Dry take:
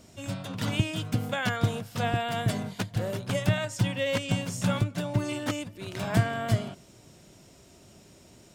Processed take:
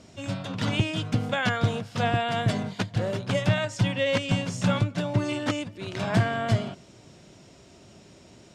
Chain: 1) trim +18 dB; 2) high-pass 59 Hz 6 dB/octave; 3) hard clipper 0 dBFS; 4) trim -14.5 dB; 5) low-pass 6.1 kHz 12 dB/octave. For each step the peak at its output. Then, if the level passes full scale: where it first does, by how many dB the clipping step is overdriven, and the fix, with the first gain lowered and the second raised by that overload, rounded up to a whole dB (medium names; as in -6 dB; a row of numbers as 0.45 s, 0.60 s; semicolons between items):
+7.0 dBFS, +7.0 dBFS, 0.0 dBFS, -14.5 dBFS, -14.0 dBFS; step 1, 7.0 dB; step 1 +11 dB, step 4 -7.5 dB